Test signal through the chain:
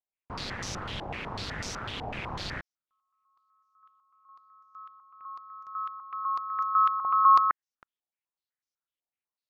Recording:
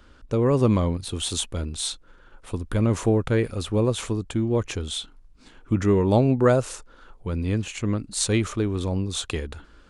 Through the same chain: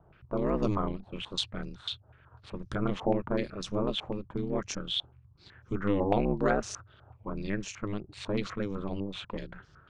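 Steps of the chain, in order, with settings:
ring modulation 100 Hz
low-pass on a step sequencer 8 Hz 770–5,800 Hz
level −6 dB

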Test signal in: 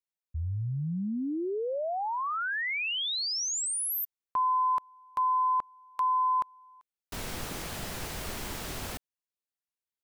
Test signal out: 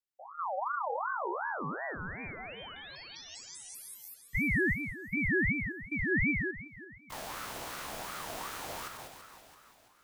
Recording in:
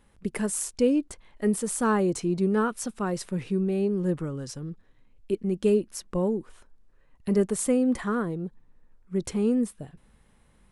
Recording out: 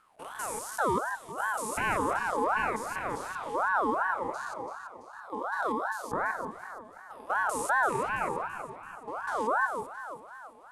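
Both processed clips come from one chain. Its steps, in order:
spectrum averaged block by block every 200 ms
delay that swaps between a low-pass and a high-pass 167 ms, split 870 Hz, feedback 71%, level −7 dB
ring modulator whose carrier an LFO sweeps 980 Hz, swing 35%, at 2.7 Hz

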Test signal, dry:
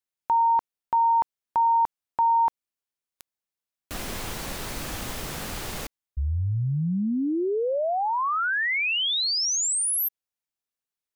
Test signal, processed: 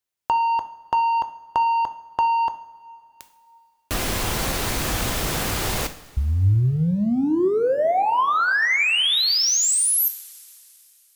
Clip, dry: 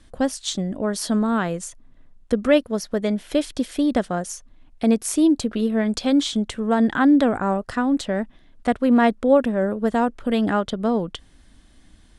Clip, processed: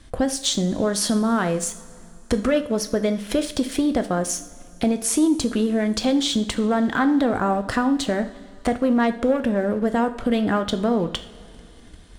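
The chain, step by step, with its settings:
leveller curve on the samples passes 1
in parallel at +0.5 dB: brickwall limiter −15.5 dBFS
on the sum: downward compressor 2.5 to 1, threshold −21 dBFS
coupled-rooms reverb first 0.51 s, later 3.1 s, from −18 dB, DRR 8 dB

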